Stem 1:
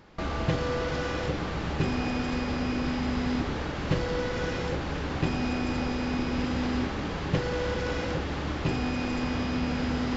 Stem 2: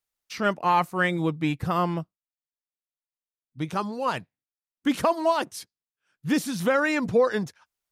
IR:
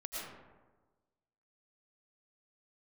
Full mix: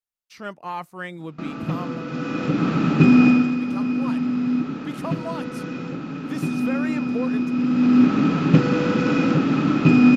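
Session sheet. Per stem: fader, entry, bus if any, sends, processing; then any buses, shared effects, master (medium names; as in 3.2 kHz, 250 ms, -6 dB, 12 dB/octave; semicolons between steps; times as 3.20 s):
+2.5 dB, 1.20 s, no send, resonant low shelf 100 Hz -13.5 dB, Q 3; small resonant body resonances 260/1300/2500 Hz, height 15 dB, ringing for 35 ms; auto duck -11 dB, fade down 0.30 s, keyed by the second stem
-9.5 dB, 0.00 s, no send, none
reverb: none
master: none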